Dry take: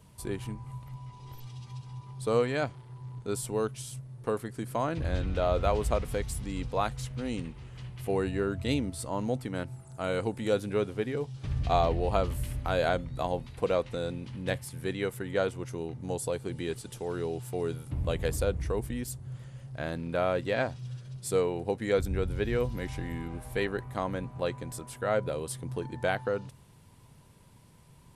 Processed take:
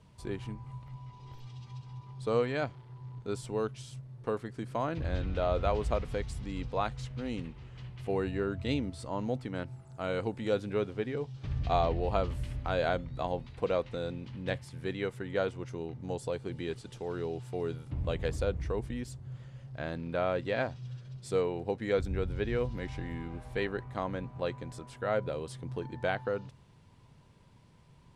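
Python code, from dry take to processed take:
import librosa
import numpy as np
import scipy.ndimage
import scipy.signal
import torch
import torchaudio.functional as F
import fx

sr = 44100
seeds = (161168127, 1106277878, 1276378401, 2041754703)

y = scipy.signal.sosfilt(scipy.signal.butter(2, 5400.0, 'lowpass', fs=sr, output='sos'), x)
y = y * 10.0 ** (-2.5 / 20.0)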